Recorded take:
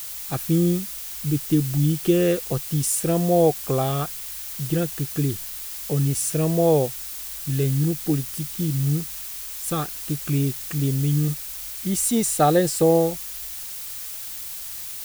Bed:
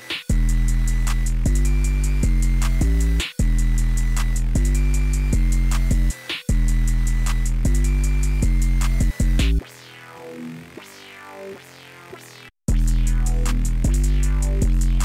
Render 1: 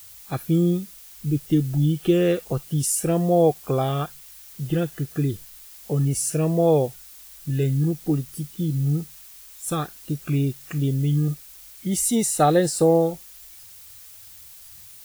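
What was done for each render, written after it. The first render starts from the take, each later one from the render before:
noise reduction from a noise print 11 dB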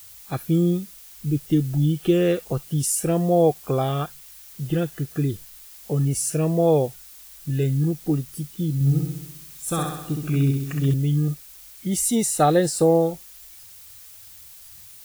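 0:08.74–0:10.94: flutter between parallel walls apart 11.2 metres, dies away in 0.87 s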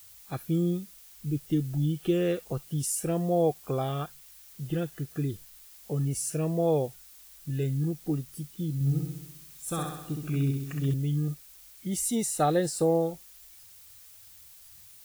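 level −7 dB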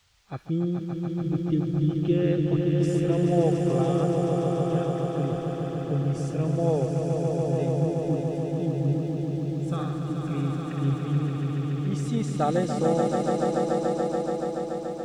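high-frequency loss of the air 150 metres
echo that builds up and dies away 143 ms, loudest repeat 5, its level −6 dB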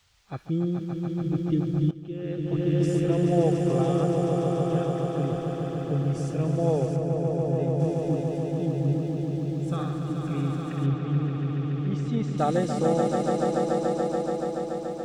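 0:01.91–0:02.70: fade in quadratic, from −14.5 dB
0:06.96–0:07.80: high-shelf EQ 2,400 Hz −9.5 dB
0:10.86–0:12.38: high-frequency loss of the air 130 metres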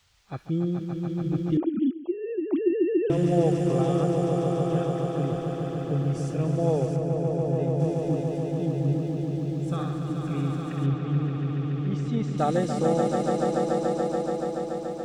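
0:01.57–0:03.10: three sine waves on the formant tracks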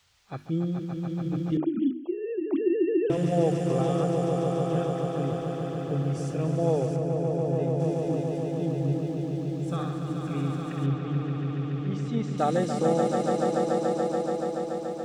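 low-shelf EQ 62 Hz −8.5 dB
mains-hum notches 50/100/150/200/250/300/350 Hz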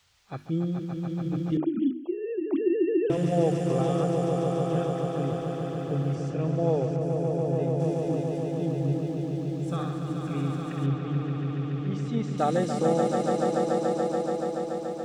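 0:06.15–0:07.01: high-frequency loss of the air 90 metres

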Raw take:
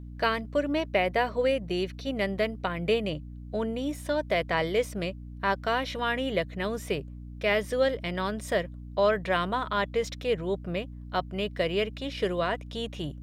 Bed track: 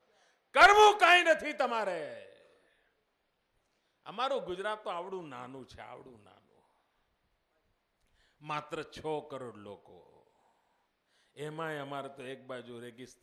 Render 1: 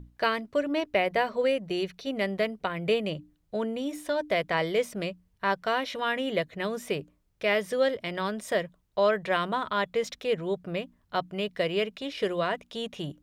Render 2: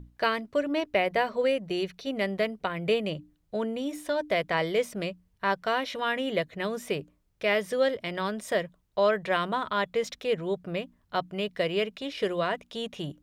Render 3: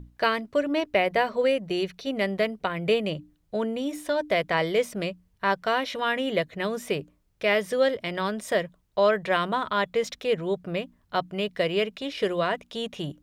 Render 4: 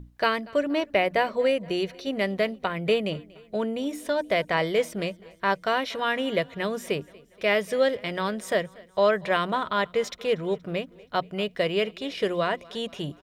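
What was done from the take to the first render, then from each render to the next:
mains-hum notches 60/120/180/240/300 Hz
no processing that can be heard
level +2.5 dB
repeating echo 237 ms, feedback 58%, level −23.5 dB

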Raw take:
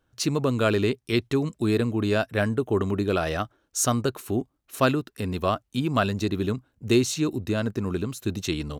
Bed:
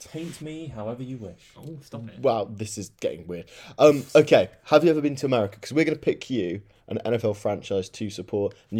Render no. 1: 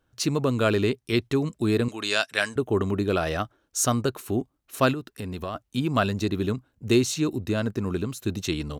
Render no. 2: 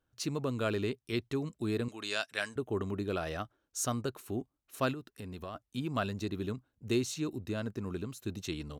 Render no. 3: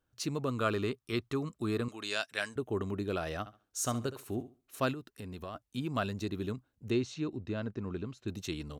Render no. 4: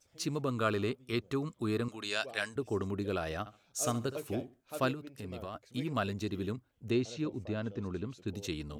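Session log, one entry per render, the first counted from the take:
0:01.88–0:02.56: meter weighting curve ITU-R 468; 0:04.93–0:05.55: downward compressor 3 to 1, threshold −30 dBFS
level −10 dB
0:00.48–0:01.96: parametric band 1,200 Hz +10 dB 0.35 octaves; 0:03.39–0:04.78: flutter between parallel walls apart 11.8 metres, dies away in 0.31 s; 0:06.90–0:08.28: high-frequency loss of the air 140 metres
mix in bed −25.5 dB

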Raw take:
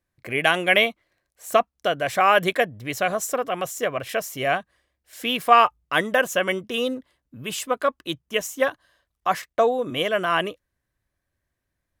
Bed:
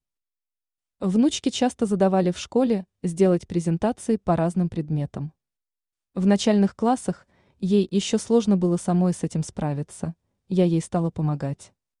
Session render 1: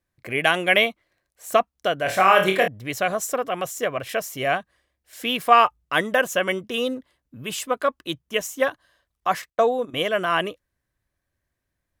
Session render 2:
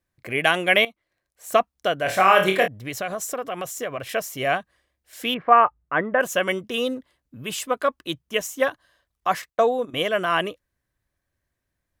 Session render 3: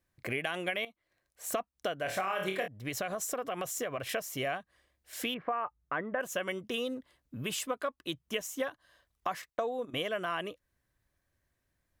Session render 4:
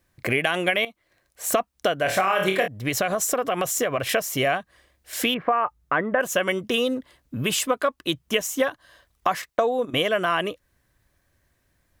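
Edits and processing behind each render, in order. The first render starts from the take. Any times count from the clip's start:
0:02.03–0:02.68: flutter between parallel walls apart 4.5 metres, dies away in 0.35 s; 0:09.50–0:09.94: noise gate −30 dBFS, range −14 dB
0:00.85–0:01.57: fade in, from −14 dB; 0:02.66–0:04.11: downward compressor 2.5 to 1, threshold −26 dBFS; 0:05.34–0:06.21: low-pass filter 1,900 Hz 24 dB per octave
brickwall limiter −9 dBFS, peak gain reduction 7 dB; downward compressor 4 to 1, threshold −33 dBFS, peak gain reduction 15 dB
level +11.5 dB

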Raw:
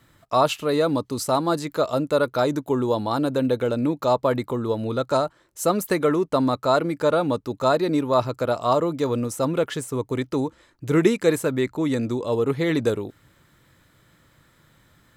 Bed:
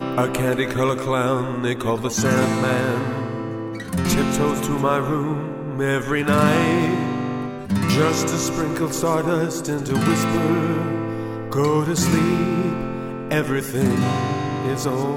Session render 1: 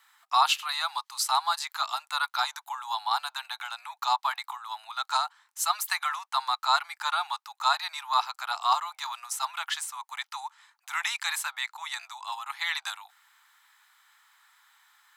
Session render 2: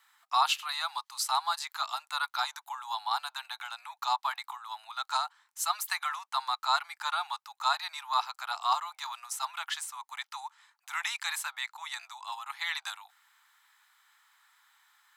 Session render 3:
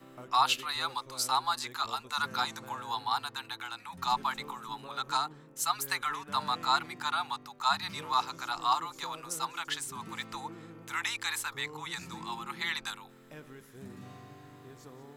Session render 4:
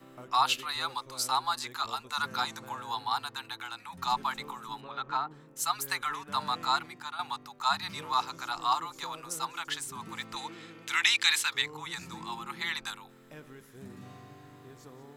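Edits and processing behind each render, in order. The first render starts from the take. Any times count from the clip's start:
Butterworth high-pass 770 Hz 96 dB per octave; dynamic equaliser 4,000 Hz, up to +5 dB, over −44 dBFS, Q 1.1
level −3.5 dB
mix in bed −28 dB
0:04.80–0:05.30: low-pass filter 4,200 Hz → 1,800 Hz; 0:06.67–0:07.19: fade out, to −11 dB; 0:10.36–0:11.62: meter weighting curve D

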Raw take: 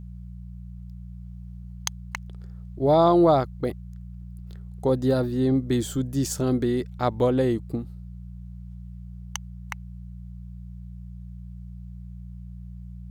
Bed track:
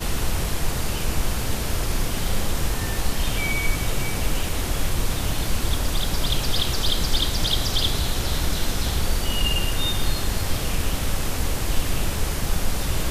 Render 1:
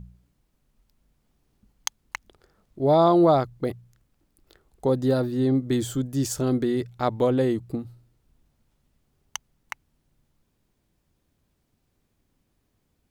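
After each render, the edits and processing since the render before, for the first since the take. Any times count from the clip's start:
hum removal 60 Hz, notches 3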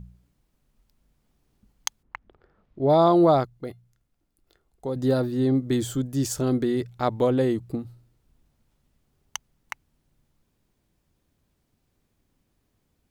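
0:02.02–0:02.88: low-pass filter 1,400 Hz → 3,600 Hz
0:03.45–0:04.96: tuned comb filter 700 Hz, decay 0.16 s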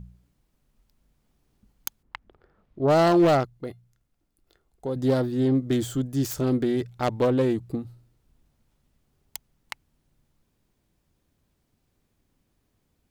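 phase distortion by the signal itself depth 0.21 ms
wave folding −12.5 dBFS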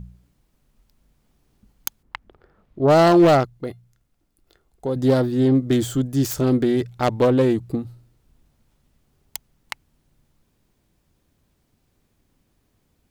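level +5 dB

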